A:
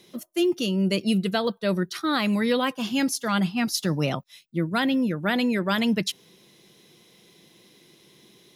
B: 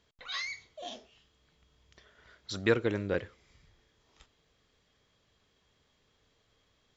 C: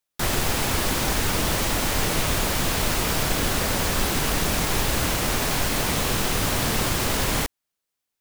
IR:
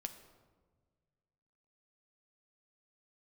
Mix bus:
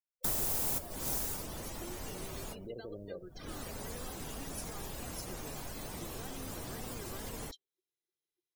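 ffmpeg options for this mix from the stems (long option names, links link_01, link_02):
-filter_complex "[0:a]aecho=1:1:2.5:0.78,acompressor=threshold=-32dB:ratio=8,adelay=1450,volume=-14.5dB[link_01];[1:a]alimiter=limit=-24dB:level=0:latency=1:release=60,lowpass=frequency=610:width_type=q:width=3.6,volume=-13.5dB,asplit=2[link_02][link_03];[2:a]adelay=50,volume=-6.5dB,afade=type=out:start_time=0.81:duration=0.64:silence=0.298538[link_04];[link_03]apad=whole_len=363998[link_05];[link_04][link_05]sidechaincompress=threshold=-58dB:ratio=8:attack=46:release=255[link_06];[link_01][link_02][link_06]amix=inputs=3:normalize=0,afftdn=noise_reduction=34:noise_floor=-47,aemphasis=mode=production:type=50kf,acrossover=split=360|1000|5600[link_07][link_08][link_09][link_10];[link_07]acompressor=threshold=-41dB:ratio=4[link_11];[link_08]acompressor=threshold=-45dB:ratio=4[link_12];[link_09]acompressor=threshold=-53dB:ratio=4[link_13];[link_10]acompressor=threshold=-32dB:ratio=4[link_14];[link_11][link_12][link_13][link_14]amix=inputs=4:normalize=0"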